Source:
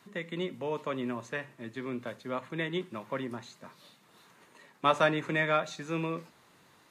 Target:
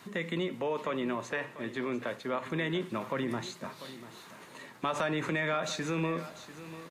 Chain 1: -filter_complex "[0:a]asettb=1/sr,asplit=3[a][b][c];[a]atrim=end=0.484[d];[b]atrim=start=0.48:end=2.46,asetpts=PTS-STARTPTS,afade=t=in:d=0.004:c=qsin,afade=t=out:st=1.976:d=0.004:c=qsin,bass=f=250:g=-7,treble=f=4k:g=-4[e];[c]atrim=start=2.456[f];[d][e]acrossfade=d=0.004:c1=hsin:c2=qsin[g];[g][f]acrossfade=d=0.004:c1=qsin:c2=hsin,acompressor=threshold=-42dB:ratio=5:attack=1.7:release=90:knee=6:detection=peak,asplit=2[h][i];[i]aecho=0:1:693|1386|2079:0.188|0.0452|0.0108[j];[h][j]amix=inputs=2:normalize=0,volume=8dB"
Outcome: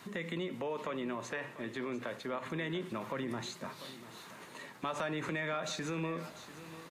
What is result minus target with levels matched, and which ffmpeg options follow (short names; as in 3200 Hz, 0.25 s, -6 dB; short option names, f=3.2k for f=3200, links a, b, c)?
compressor: peak gain reduction +5 dB
-filter_complex "[0:a]asettb=1/sr,asplit=3[a][b][c];[a]atrim=end=0.484[d];[b]atrim=start=0.48:end=2.46,asetpts=PTS-STARTPTS,afade=t=in:d=0.004:c=qsin,afade=t=out:st=1.976:d=0.004:c=qsin,bass=f=250:g=-7,treble=f=4k:g=-4[e];[c]atrim=start=2.456[f];[d][e]acrossfade=d=0.004:c1=hsin:c2=qsin[g];[g][f]acrossfade=d=0.004:c1=qsin:c2=hsin,acompressor=threshold=-35.5dB:ratio=5:attack=1.7:release=90:knee=6:detection=peak,asplit=2[h][i];[i]aecho=0:1:693|1386|2079:0.188|0.0452|0.0108[j];[h][j]amix=inputs=2:normalize=0,volume=8dB"